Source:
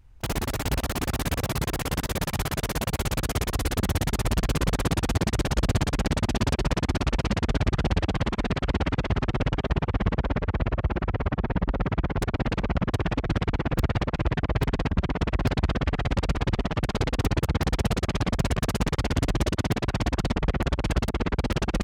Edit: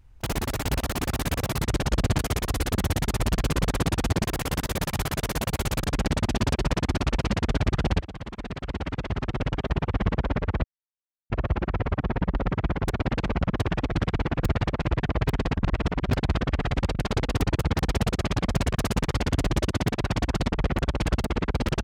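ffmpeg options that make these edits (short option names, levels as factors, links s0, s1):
-filter_complex "[0:a]asplit=10[s0][s1][s2][s3][s4][s5][s6][s7][s8][s9];[s0]atrim=end=1.642[s10];[s1]atrim=start=5.288:end=5.842[s11];[s2]atrim=start=3.238:end=5.292[s12];[s3]atrim=start=1.638:end=3.242[s13];[s4]atrim=start=5.838:end=8.01,asetpts=PTS-STARTPTS,afade=t=out:st=2.168:d=0.004:c=hsin:silence=0.188365[s14];[s5]atrim=start=8.01:end=10.64,asetpts=PTS-STARTPTS,afade=t=in:d=1.98:silence=0.188365,afade=t=out:st=2.626:d=0.004:c=hsin,apad=pad_dur=0.66[s15];[s6]atrim=start=10.64:end=14.992,asetpts=PTS-STARTPTS,afade=t=in:d=0.004:c=hsin[s16];[s7]atrim=start=14.988:end=15.442,asetpts=PTS-STARTPTS,areverse[s17];[s8]atrim=start=15.438:end=16.292[s18];[s9]atrim=start=16.788[s19];[s10][s11]acrossfade=d=0.004:c1=hsin:c2=hsin[s20];[s20][s12]acrossfade=d=0.004:c1=hsin:c2=hsin[s21];[s21][s13]acrossfade=d=0.004:c1=hsin:c2=hsin[s22];[s14][s15][s16]concat=n=3:v=0:a=1[s23];[s22][s23]acrossfade=d=0.004:c1=hsin:c2=hsin[s24];[s24][s17]acrossfade=d=0.004:c1=hsin:c2=hsin[s25];[s25][s18]acrossfade=d=0.004:c1=hsin:c2=hsin[s26];[s26][s19]acrossfade=d=0.004:c1=hsin:c2=hsin"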